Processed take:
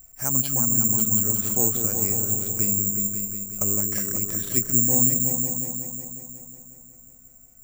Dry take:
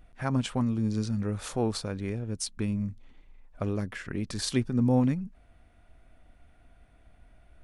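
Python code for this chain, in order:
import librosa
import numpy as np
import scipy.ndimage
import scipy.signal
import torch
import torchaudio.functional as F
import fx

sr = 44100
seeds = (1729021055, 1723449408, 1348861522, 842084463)

y = fx.rider(x, sr, range_db=10, speed_s=2.0)
y = fx.echo_opening(y, sr, ms=182, hz=400, octaves=2, feedback_pct=70, wet_db=-3)
y = (np.kron(scipy.signal.resample_poly(y, 1, 6), np.eye(6)[0]) * 6)[:len(y)]
y = F.gain(torch.from_numpy(y), -3.5).numpy()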